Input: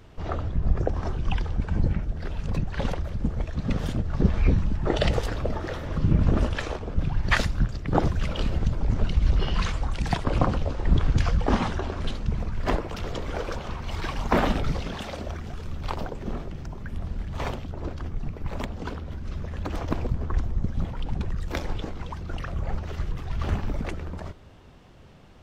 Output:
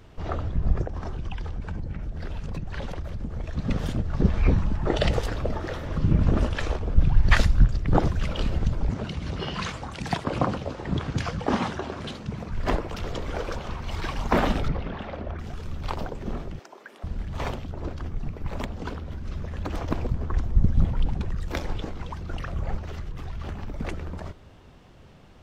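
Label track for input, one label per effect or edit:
0.820000	3.440000	compression, threshold -27 dBFS
4.430000	4.840000	peaking EQ 940 Hz +5.5 dB 1.5 oct
6.610000	7.970000	bass shelf 100 Hz +9 dB
8.890000	12.510000	high-pass 120 Hz
14.680000	15.390000	low-pass 2.2 kHz
16.590000	17.040000	high-pass 370 Hz 24 dB/octave
20.540000	21.100000	bass shelf 250 Hz +8 dB
22.770000	23.800000	compression, threshold -29 dBFS

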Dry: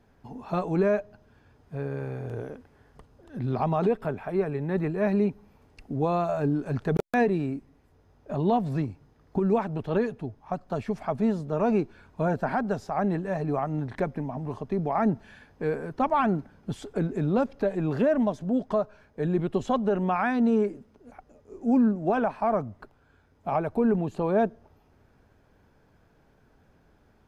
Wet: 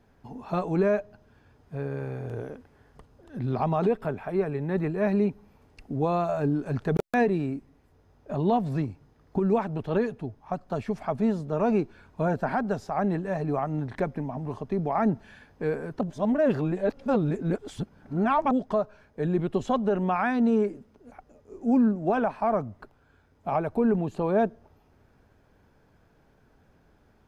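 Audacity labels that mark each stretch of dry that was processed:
16.010000	18.510000	reverse

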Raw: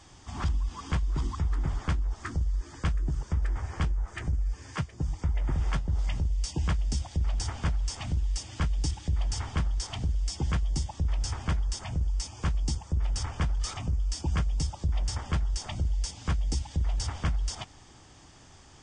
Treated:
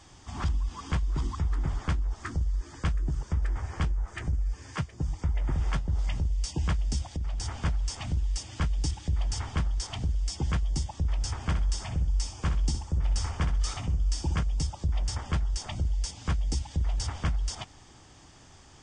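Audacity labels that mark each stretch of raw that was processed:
7.160000	7.610000	compression 4:1, threshold -28 dBFS
11.360000	14.430000	feedback delay 64 ms, feedback 26%, level -8.5 dB

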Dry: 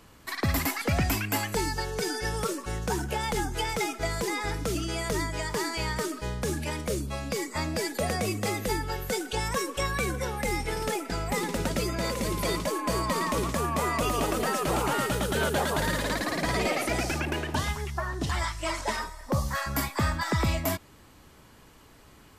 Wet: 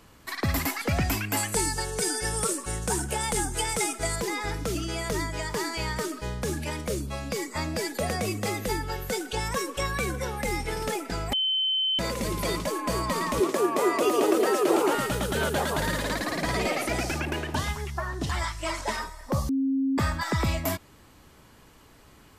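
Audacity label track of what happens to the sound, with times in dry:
1.370000	4.160000	peaking EQ 8.8 kHz +14 dB 0.63 oct
11.330000	11.990000	bleep 3.07 kHz -22.5 dBFS
13.400000	14.950000	resonant high-pass 360 Hz, resonance Q 4.1
19.490000	19.980000	bleep 269 Hz -22 dBFS

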